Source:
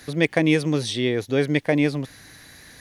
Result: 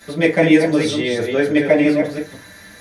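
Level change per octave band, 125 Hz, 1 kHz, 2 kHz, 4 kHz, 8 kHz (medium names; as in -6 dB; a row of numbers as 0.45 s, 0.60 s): -0.5 dB, +6.0 dB, +5.5 dB, +2.5 dB, +2.5 dB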